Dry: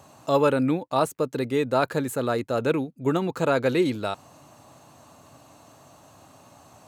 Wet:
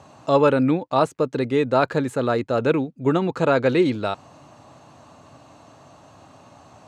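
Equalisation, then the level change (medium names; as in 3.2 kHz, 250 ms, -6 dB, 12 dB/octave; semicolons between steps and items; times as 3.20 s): distance through air 85 m; +4.0 dB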